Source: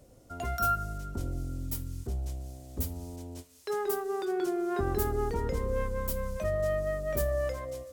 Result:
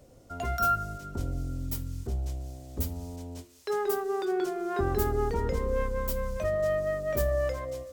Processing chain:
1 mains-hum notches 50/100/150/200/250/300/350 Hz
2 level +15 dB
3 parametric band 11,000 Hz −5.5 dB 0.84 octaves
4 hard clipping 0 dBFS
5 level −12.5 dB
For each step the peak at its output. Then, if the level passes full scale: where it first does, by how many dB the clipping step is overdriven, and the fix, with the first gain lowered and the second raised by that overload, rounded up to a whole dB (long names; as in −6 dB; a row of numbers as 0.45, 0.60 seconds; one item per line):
−16.5, −1.5, −2.0, −2.0, −14.5 dBFS
no step passes full scale